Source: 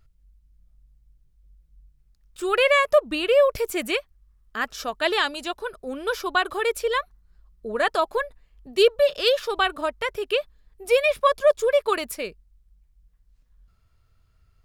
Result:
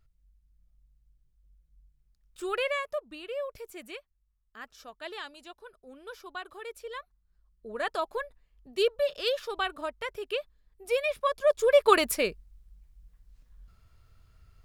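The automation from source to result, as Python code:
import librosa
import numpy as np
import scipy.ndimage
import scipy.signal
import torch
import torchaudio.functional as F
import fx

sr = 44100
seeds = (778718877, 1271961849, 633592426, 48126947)

y = fx.gain(x, sr, db=fx.line((2.45, -7.5), (3.04, -17.5), (6.73, -17.5), (7.94, -8.5), (11.35, -8.5), (11.93, 3.5)))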